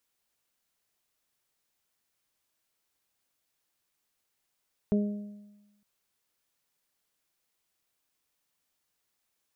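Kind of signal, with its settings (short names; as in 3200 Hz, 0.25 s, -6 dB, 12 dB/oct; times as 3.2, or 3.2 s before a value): additive tone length 0.91 s, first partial 206 Hz, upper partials -6.5/-14 dB, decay 1.11 s, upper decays 0.66/0.93 s, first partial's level -21 dB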